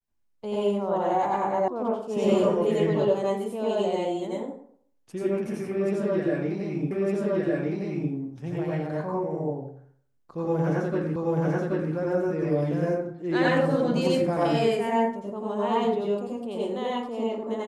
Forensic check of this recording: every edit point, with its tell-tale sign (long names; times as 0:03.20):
0:01.68: cut off before it has died away
0:06.91: the same again, the last 1.21 s
0:11.16: the same again, the last 0.78 s